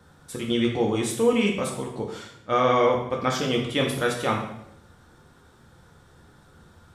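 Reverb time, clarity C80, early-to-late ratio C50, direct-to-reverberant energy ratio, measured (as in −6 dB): 0.75 s, 8.0 dB, 5.0 dB, −0.5 dB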